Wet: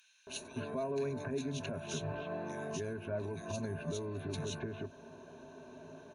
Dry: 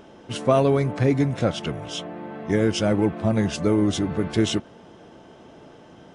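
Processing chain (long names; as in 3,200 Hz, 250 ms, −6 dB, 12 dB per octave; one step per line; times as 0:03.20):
speech leveller within 3 dB 0.5 s
low-shelf EQ 80 Hz −6 dB
downward compressor 4 to 1, threshold −27 dBFS, peak gain reduction 10.5 dB
multiband delay without the direct sound highs, lows 270 ms, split 2,200 Hz
brickwall limiter −23 dBFS, peak gain reduction 8 dB
EQ curve with evenly spaced ripples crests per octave 1.5, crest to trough 15 dB
level −7.5 dB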